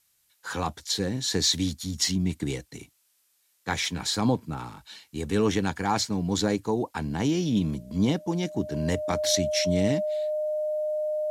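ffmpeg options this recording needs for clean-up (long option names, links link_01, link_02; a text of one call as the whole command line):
ffmpeg -i in.wav -af "bandreject=frequency=610:width=30,agate=range=-21dB:threshold=-60dB" out.wav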